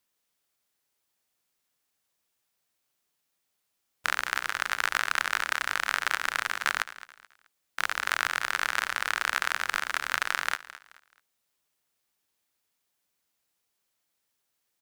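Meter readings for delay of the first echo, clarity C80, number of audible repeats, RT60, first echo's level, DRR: 215 ms, no reverb, 2, no reverb, -16.5 dB, no reverb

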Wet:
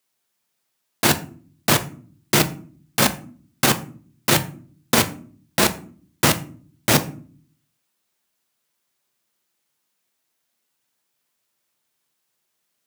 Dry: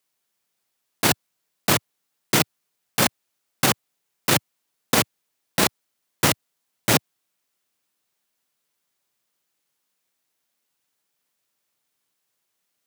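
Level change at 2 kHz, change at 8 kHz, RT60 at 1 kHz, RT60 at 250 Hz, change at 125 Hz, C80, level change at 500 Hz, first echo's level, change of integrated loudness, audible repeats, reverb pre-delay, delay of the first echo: +2.0 dB, +2.0 dB, 0.40 s, 0.80 s, +3.5 dB, 20.5 dB, +2.5 dB, no echo, +2.0 dB, no echo, 3 ms, no echo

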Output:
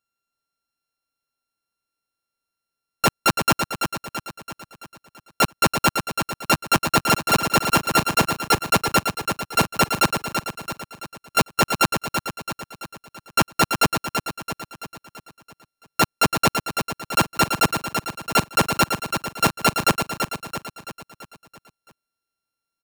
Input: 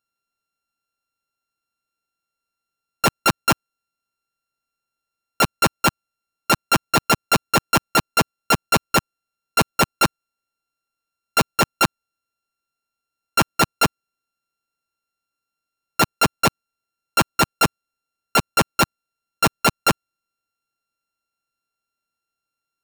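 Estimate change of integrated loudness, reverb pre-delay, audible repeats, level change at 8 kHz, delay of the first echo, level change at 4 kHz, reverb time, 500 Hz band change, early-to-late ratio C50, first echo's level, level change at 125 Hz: -1.0 dB, no reverb, 6, 0.0 dB, 334 ms, 0.0 dB, no reverb, 0.0 dB, no reverb, -6.5 dB, 0.0 dB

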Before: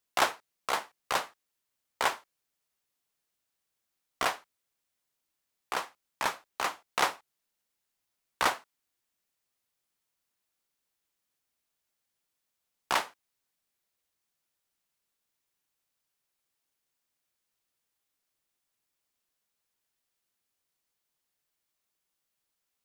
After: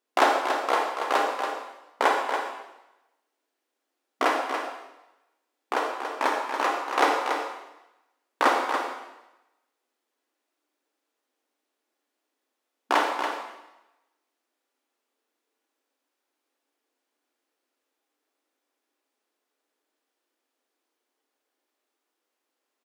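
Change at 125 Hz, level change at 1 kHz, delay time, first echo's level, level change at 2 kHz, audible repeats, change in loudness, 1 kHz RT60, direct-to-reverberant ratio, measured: under -15 dB, +9.0 dB, 283 ms, -7.0 dB, +6.0 dB, 1, +6.0 dB, 1.0 s, 0.0 dB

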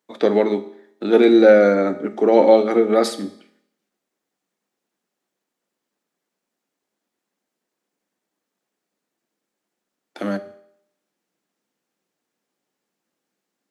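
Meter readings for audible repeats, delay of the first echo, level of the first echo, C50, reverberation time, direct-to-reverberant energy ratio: no echo, no echo, no echo, 14.5 dB, 0.70 s, 10.0 dB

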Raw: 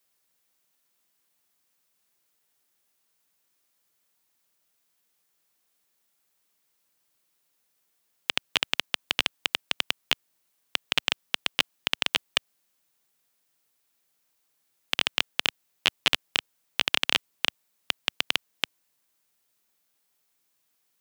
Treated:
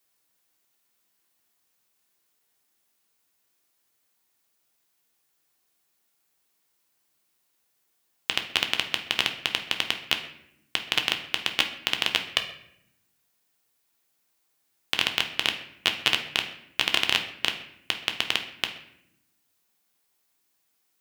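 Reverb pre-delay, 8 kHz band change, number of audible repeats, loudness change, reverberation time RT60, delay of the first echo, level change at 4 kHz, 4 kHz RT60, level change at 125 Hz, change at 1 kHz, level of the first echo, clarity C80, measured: 3 ms, +0.5 dB, no echo, +1.0 dB, 0.75 s, no echo, +1.0 dB, 0.55 s, +1.5 dB, +1.5 dB, no echo, 12.5 dB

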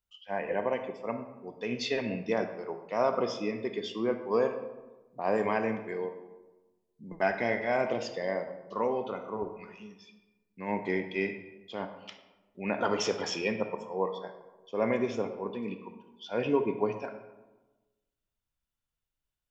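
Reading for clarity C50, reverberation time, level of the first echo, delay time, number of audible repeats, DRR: 8.5 dB, 1.2 s, no echo, no echo, no echo, 7.0 dB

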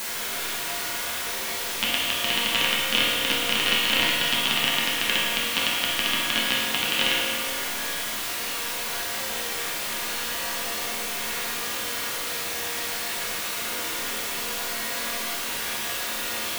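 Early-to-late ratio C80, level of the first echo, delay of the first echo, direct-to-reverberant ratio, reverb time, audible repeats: 0.5 dB, no echo, no echo, -7.0 dB, 1.8 s, no echo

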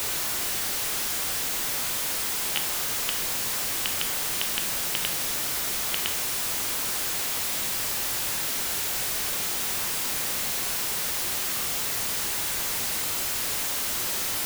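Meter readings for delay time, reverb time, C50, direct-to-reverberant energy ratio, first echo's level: no echo, 0.50 s, 10.5 dB, 6.5 dB, no echo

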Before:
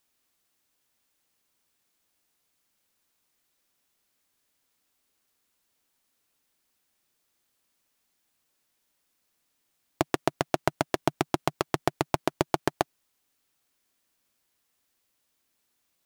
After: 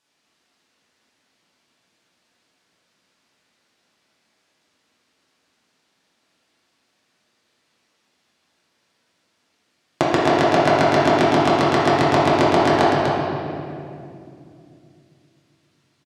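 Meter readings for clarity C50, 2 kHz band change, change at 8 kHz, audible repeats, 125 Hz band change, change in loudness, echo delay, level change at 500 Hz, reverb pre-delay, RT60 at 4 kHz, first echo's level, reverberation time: -3.5 dB, +13.5 dB, +5.0 dB, 1, +12.0 dB, +12.5 dB, 246 ms, +14.0 dB, 6 ms, 1.8 s, -6.0 dB, 2.5 s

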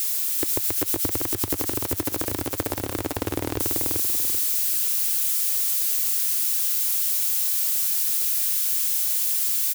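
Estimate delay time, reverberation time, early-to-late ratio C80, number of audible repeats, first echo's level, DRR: 387 ms, no reverb, no reverb, 4, -3.0 dB, no reverb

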